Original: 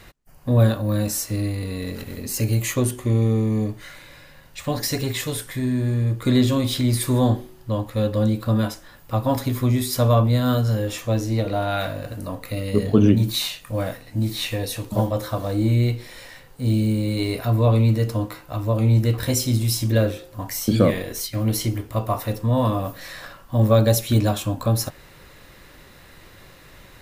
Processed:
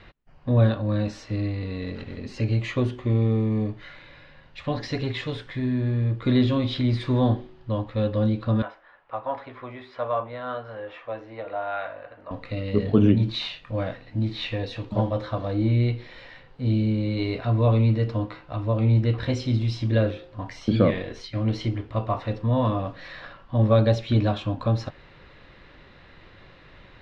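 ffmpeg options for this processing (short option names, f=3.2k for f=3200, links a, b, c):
-filter_complex "[0:a]asettb=1/sr,asplit=3[a][b][c];[a]atrim=end=8.624[d];[b]atrim=start=8.62:end=12.31,asetpts=PTS-STARTPTS,afade=t=in:d=0.004:c=qsin,afade=t=out:st=3.686:d=0.004:c=qsin,acrossover=split=500 2400:gain=0.0708 1 0.0891[e][f][g];[e][f][g]amix=inputs=3:normalize=0[h];[c]atrim=start=12.306[i];[d][h]acrossfade=d=0.004:c1=hsin:c2=qsin[j];[j][i]acrossfade=d=0.004:c1=qsin:c2=hsin,lowpass=f=3.9k:w=0.5412,lowpass=f=3.9k:w=1.3066,volume=-2.5dB"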